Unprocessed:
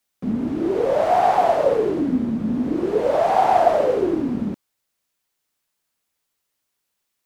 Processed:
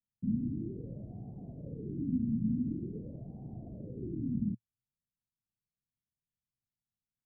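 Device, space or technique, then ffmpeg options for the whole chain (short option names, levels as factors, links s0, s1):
the neighbour's flat through the wall: -af "lowpass=f=220:w=0.5412,lowpass=f=220:w=1.3066,equalizer=f=120:t=o:w=0.6:g=6.5,volume=0.501"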